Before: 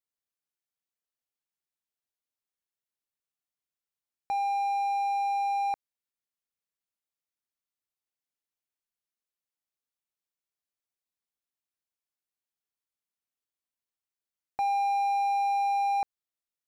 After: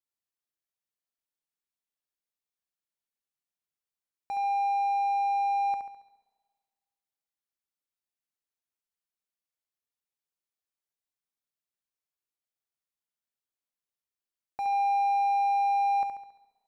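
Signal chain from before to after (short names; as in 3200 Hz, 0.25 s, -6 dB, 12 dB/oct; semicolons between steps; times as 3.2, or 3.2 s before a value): notches 50/100 Hz; flutter echo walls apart 11.8 m, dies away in 0.64 s; spring tank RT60 1.7 s, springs 32/52 ms, chirp 40 ms, DRR 18 dB; gain -4 dB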